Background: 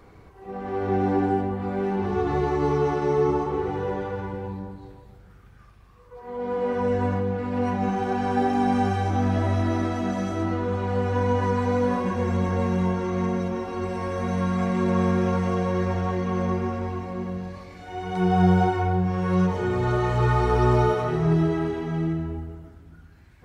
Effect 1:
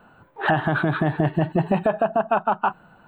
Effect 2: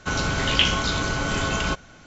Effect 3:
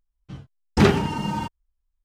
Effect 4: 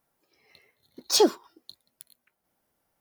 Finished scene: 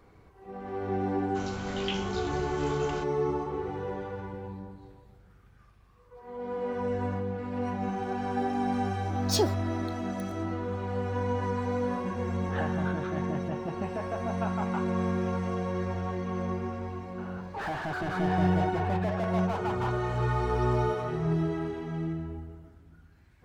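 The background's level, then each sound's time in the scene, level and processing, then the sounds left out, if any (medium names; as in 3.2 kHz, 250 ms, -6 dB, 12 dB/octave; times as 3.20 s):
background -7 dB
1.29 s: add 2 -16 dB
8.19 s: add 4 -6.5 dB
12.10 s: add 1 -8 dB + feedback comb 69 Hz, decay 0.53 s, mix 70%
17.18 s: add 1 -16 dB + overdrive pedal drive 34 dB, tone 1.1 kHz, clips at -9.5 dBFS
not used: 3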